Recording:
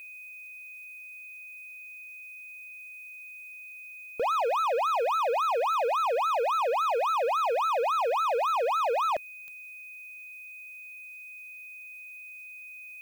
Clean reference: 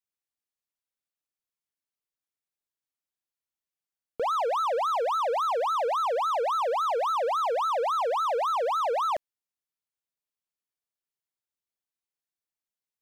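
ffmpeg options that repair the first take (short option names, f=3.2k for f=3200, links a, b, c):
-af "adeclick=t=4,bandreject=f=2.5k:w=30,agate=range=-21dB:threshold=-37dB"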